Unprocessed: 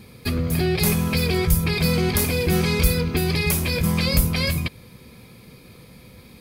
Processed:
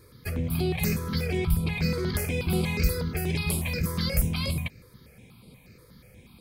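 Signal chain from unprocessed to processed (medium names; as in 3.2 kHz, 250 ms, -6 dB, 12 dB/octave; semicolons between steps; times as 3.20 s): 0.99–2.50 s: treble shelf 8.7 kHz -8 dB; stepped phaser 8.3 Hz 760–6100 Hz; trim -4.5 dB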